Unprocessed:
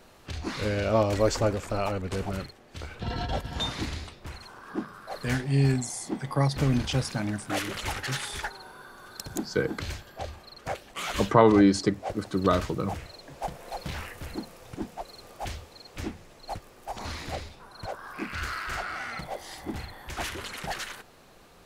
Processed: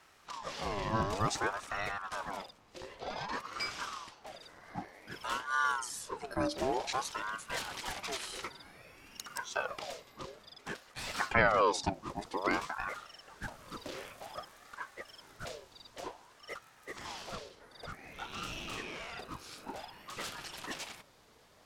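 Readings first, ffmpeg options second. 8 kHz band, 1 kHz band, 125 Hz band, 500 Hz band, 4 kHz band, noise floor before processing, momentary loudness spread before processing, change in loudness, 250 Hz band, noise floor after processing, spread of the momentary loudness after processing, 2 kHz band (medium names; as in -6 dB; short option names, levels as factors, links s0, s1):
-5.0 dB, -3.5 dB, -16.5 dB, -9.5 dB, -5.5 dB, -54 dBFS, 17 LU, -8.0 dB, -15.0 dB, -62 dBFS, 16 LU, -1.5 dB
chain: -af "equalizer=f=5200:t=o:w=1.5:g=4.5,aeval=exprs='val(0)*sin(2*PI*880*n/s+880*0.5/0.54*sin(2*PI*0.54*n/s))':c=same,volume=0.501"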